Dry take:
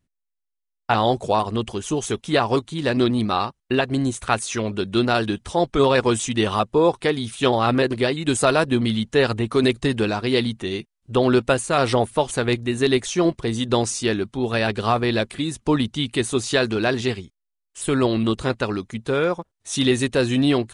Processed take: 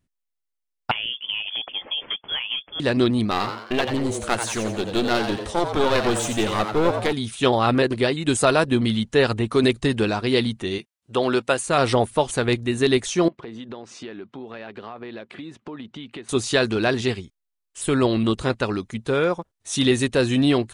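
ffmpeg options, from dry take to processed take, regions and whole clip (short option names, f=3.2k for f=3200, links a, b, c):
-filter_complex "[0:a]asettb=1/sr,asplit=3[a][b][c];[a]atrim=end=0.914[d];[b]atrim=start=0.91:end=2.8,asetpts=PTS-STARTPTS,afade=t=in:d=0.004:c=qsin,afade=t=out:st=1.886:d=0.004:c=qsin,highpass=250,acompressor=threshold=-22dB:ratio=10:attack=3.2:release=140:knee=1:detection=peak,lowpass=f=3.1k:t=q:w=0.5098,lowpass=f=3.1k:t=q:w=0.6013,lowpass=f=3.1k:t=q:w=0.9,lowpass=f=3.1k:t=q:w=2.563,afreqshift=-3600[e];[c]atrim=start=2.796[f];[d][e]acrossfade=d=0.004:c1=hsin:c2=qsin[g];[g][f]acrossfade=d=0.004:c1=qsin:c2=hsin,asettb=1/sr,asplit=3[h][i][j];[h]atrim=end=3.314[k];[i]atrim=start=3.31:end=7.13,asetpts=PTS-STARTPTS,afade=t=in:d=0.004:c=qsin,afade=t=out:st=3.816:d=0.004:c=qsin,aeval=exprs='clip(val(0),-1,0.0501)':c=same,asplit=6[l][m][n][o][p][q];[m]adelay=88,afreqshift=110,volume=-7.5dB[r];[n]adelay=176,afreqshift=220,volume=-14.2dB[s];[o]adelay=264,afreqshift=330,volume=-21dB[t];[p]adelay=352,afreqshift=440,volume=-27.7dB[u];[q]adelay=440,afreqshift=550,volume=-34.5dB[v];[l][r][s][t][u][v]amix=inputs=6:normalize=0,atrim=end_sample=168462[w];[j]atrim=start=7.126[x];[k][w]acrossfade=d=0.004:c1=hsin:c2=qsin[y];[y][x]acrossfade=d=0.004:c1=qsin:c2=hsin,asettb=1/sr,asplit=3[z][aa][ab];[z]atrim=end=10.784[ac];[aa]atrim=start=10.78:end=11.67,asetpts=PTS-STARTPTS,afade=t=in:d=0.004:c=qsin,afade=t=out:st=0.886:d=0.004:c=qsin,highpass=80,lowshelf=f=270:g=-11[ad];[ab]atrim=start=11.666[ae];[ac][ad]acrossfade=d=0.004:c1=hsin:c2=qsin[af];[af][ae]acrossfade=d=0.004:c1=qsin:c2=hsin,asettb=1/sr,asplit=3[ag][ah][ai];[ag]atrim=end=13.284[aj];[ah]atrim=start=13.28:end=16.29,asetpts=PTS-STARTPTS,afade=t=in:d=0.004:c=qsin,afade=t=out:st=3.006:d=0.004:c=qsin,highpass=200,lowpass=2.7k,acompressor=threshold=-33dB:ratio=6:attack=3.2:release=140:knee=1:detection=peak[ak];[ai]atrim=start=16.286[al];[aj][ak]acrossfade=d=0.004:c1=hsin:c2=qsin[am];[am][al]acrossfade=d=0.004:c1=qsin:c2=hsin"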